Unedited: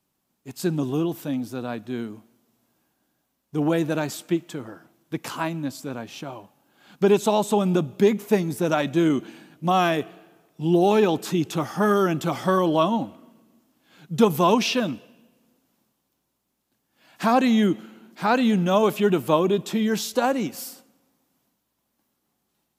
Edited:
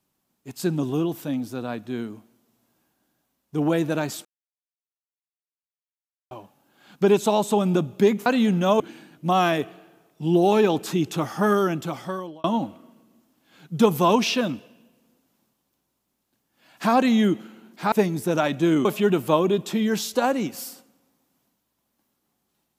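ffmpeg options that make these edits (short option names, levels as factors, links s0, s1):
-filter_complex "[0:a]asplit=8[s0][s1][s2][s3][s4][s5][s6][s7];[s0]atrim=end=4.25,asetpts=PTS-STARTPTS,afade=t=out:st=4.246:d=0.004:c=hsin[s8];[s1]atrim=start=4.25:end=6.31,asetpts=PTS-STARTPTS,volume=0[s9];[s2]atrim=start=6.31:end=8.262,asetpts=PTS-STARTPTS,afade=t=in:d=0.004:c=hsin[s10];[s3]atrim=start=18.308:end=18.852[s11];[s4]atrim=start=9.188:end=12.83,asetpts=PTS-STARTPTS,afade=t=out:st=2.712:d=0.93[s12];[s5]atrim=start=12.83:end=18.312,asetpts=PTS-STARTPTS,afade=t=in:d=0.004:c=hsin[s13];[s6]atrim=start=8.258:end=9.192[s14];[s7]atrim=start=18.848[s15];[s8][s9][s10]concat=n=3:v=0:a=1[s16];[s16][s11]acrossfade=d=0.004:c1=hsin:c2=hsin[s17];[s12][s13]concat=n=2:v=0:a=1[s18];[s17][s18]acrossfade=d=0.004:c1=hsin:c2=hsin[s19];[s19][s14]acrossfade=d=0.004:c1=hsin:c2=hsin[s20];[s20][s15]acrossfade=d=0.004:c1=hsin:c2=hsin"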